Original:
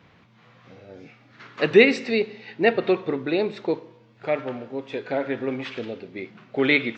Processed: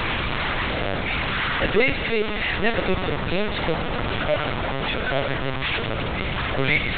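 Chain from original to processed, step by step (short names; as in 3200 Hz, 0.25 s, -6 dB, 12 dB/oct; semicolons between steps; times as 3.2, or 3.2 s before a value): delta modulation 64 kbps, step -20 dBFS; bell 260 Hz -7 dB 1.7 oct; hard clip -18.5 dBFS, distortion -10 dB; LPC vocoder at 8 kHz pitch kept; gain +4 dB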